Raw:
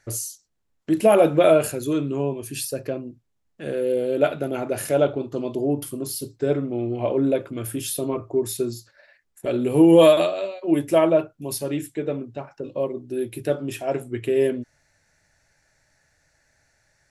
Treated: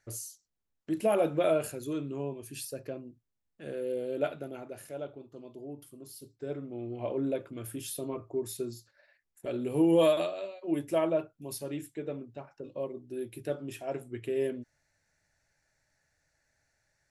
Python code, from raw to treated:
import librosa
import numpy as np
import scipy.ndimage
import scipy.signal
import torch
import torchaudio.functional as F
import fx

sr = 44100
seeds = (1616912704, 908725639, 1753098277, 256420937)

y = fx.gain(x, sr, db=fx.line((4.26, -11.0), (4.89, -20.0), (5.9, -20.0), (7.08, -10.5)))